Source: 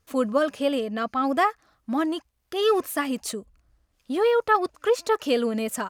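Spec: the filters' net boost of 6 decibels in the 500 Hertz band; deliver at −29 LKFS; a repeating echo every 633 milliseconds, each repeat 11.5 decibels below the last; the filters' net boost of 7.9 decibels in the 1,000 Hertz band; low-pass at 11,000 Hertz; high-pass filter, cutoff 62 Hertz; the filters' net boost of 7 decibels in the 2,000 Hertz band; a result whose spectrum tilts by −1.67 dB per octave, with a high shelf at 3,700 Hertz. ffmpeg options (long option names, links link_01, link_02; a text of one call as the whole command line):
ffmpeg -i in.wav -af "highpass=62,lowpass=11000,equalizer=frequency=500:width_type=o:gain=5,equalizer=frequency=1000:width_type=o:gain=7.5,equalizer=frequency=2000:width_type=o:gain=7,highshelf=frequency=3700:gain=-6,aecho=1:1:633|1266|1899:0.266|0.0718|0.0194,volume=-10.5dB" out.wav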